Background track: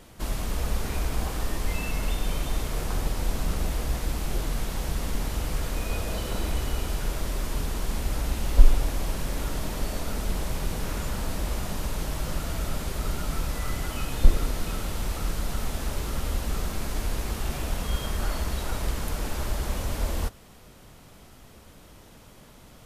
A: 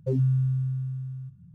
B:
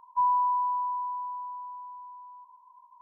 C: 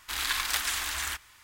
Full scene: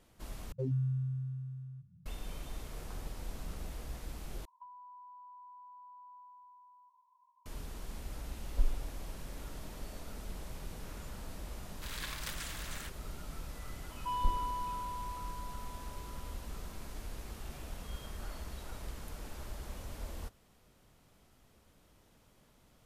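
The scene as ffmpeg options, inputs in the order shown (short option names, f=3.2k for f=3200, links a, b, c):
-filter_complex "[2:a]asplit=2[a][b];[0:a]volume=-15dB[c];[a]acompressor=threshold=-39dB:ratio=10:attack=31:release=107:knee=1:detection=rms[d];[b]asoftclip=type=tanh:threshold=-23.5dB[e];[c]asplit=3[f][g][h];[f]atrim=end=0.524[i];[1:a]atrim=end=1.54,asetpts=PTS-STARTPTS,volume=-9.5dB[j];[g]atrim=start=2.056:end=4.454[k];[d]atrim=end=3.01,asetpts=PTS-STARTPTS,volume=-13.5dB[l];[h]atrim=start=7.456[m];[3:a]atrim=end=1.43,asetpts=PTS-STARTPTS,volume=-13.5dB,afade=t=in:d=0.004:c=hsin,afade=t=out:st=1.426:d=0.004:c=hsin,adelay=11730[n];[e]atrim=end=3.01,asetpts=PTS-STARTPTS,volume=-9dB,afade=t=in:d=0.004:c=hsin,afade=t=out:st=3.006:d=0.004:c=hsin,adelay=13890[o];[i][j]acrossfade=d=0.004:c1=hsin:c2=hsin[p];[p][k]acrossfade=d=0.004:c1=hsin:c2=hsin[q];[q][l]acrossfade=d=0.004:c1=hsin:c2=hsin[r];[r][m]acrossfade=d=0.004:c1=hsin:c2=hsin[s];[s][n][o]amix=inputs=3:normalize=0"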